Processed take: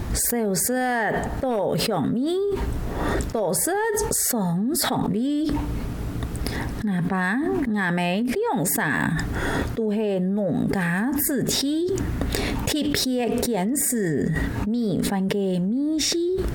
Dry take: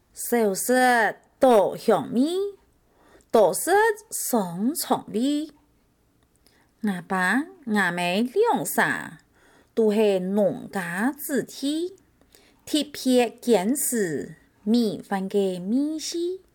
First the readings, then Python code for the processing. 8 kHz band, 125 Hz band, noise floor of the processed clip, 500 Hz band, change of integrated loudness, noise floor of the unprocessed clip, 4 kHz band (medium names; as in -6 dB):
+5.0 dB, +9.5 dB, -29 dBFS, -2.5 dB, 0.0 dB, -64 dBFS, +4.5 dB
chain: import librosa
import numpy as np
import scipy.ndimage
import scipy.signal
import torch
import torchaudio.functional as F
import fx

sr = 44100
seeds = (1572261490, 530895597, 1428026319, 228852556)

y = fx.bass_treble(x, sr, bass_db=8, treble_db=-6)
y = fx.env_flatten(y, sr, amount_pct=100)
y = F.gain(torch.from_numpy(y), -10.0).numpy()